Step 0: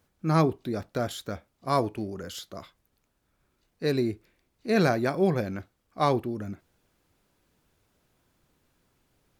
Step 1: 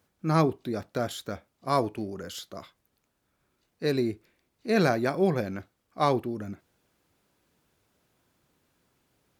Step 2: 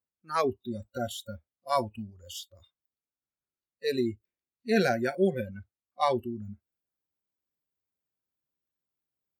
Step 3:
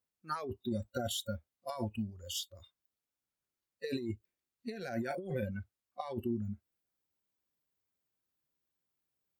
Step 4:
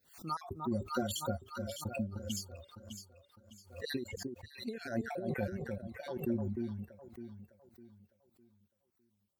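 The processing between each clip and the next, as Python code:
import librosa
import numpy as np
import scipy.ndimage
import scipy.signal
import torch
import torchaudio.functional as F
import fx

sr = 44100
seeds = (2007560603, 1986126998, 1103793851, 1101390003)

y1 = fx.highpass(x, sr, hz=97.0, slope=6)
y2 = fx.noise_reduce_blind(y1, sr, reduce_db=27)
y3 = fx.over_compress(y2, sr, threshold_db=-34.0, ratio=-1.0)
y3 = F.gain(torch.from_numpy(y3), -3.0).numpy()
y4 = fx.spec_dropout(y3, sr, seeds[0], share_pct=41)
y4 = fx.echo_alternate(y4, sr, ms=303, hz=990.0, feedback_pct=58, wet_db=-4)
y4 = fx.pre_swell(y4, sr, db_per_s=140.0)
y4 = F.gain(torch.from_numpy(y4), 1.0).numpy()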